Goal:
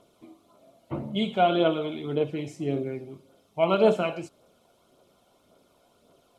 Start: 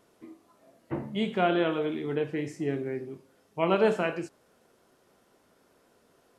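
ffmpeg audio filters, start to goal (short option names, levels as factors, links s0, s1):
-af "aphaser=in_gain=1:out_gain=1:delay=1.4:decay=0.38:speed=1.8:type=triangular,superequalizer=8b=1.78:11b=0.282:13b=1.78"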